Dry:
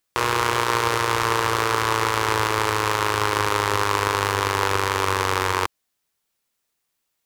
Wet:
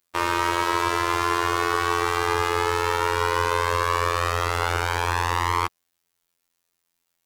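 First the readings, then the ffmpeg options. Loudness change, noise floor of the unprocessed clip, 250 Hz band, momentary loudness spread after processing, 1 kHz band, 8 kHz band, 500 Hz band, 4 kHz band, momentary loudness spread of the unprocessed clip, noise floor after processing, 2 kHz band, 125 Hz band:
−1.5 dB, −77 dBFS, −1.0 dB, 1 LU, −1.0 dB, −4.5 dB, −1.5 dB, −3.5 dB, 1 LU, −78 dBFS, −2.0 dB, −2.0 dB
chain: -af "afftfilt=real='hypot(re,im)*cos(PI*b)':imag='0':win_size=2048:overlap=0.75,acontrast=46,volume=-2.5dB"

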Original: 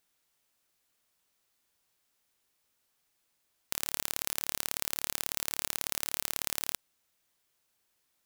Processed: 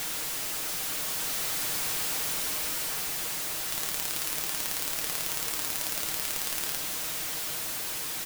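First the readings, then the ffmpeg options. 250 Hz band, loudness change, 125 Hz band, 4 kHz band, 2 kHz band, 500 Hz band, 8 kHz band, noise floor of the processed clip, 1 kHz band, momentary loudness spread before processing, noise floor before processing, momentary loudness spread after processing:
+8.0 dB, +4.0 dB, +8.0 dB, +7.5 dB, +7.5 dB, +8.0 dB, +7.5 dB, −34 dBFS, +7.5 dB, 3 LU, −77 dBFS, 3 LU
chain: -af "aeval=exprs='val(0)+0.5*0.0631*sgn(val(0))':channel_layout=same,aecho=1:1:6.4:0.44,dynaudnorm=framelen=490:gausssize=5:maxgain=3dB,volume=-3.5dB"

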